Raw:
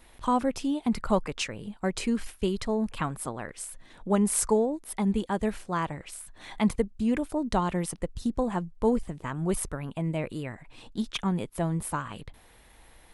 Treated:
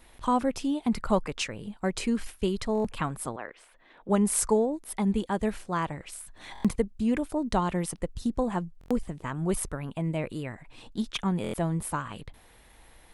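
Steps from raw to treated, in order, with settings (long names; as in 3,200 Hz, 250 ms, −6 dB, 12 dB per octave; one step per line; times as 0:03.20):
0:03.36–0:04.09: three-way crossover with the lows and the highs turned down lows −17 dB, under 300 Hz, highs −24 dB, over 3,500 Hz
buffer that repeats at 0:02.73/0:06.53/0:08.79/0:11.42, samples 1,024, times 4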